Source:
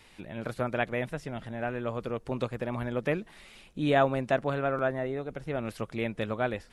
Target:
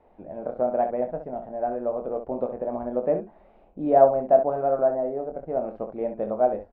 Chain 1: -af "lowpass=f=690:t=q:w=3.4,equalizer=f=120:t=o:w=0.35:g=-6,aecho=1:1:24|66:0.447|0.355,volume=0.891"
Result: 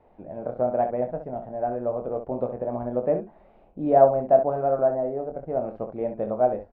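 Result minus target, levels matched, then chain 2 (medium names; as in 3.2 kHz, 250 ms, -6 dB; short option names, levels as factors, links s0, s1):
125 Hz band +5.5 dB
-af "lowpass=f=690:t=q:w=3.4,equalizer=f=120:t=o:w=0.35:g=-17.5,aecho=1:1:24|66:0.447|0.355,volume=0.891"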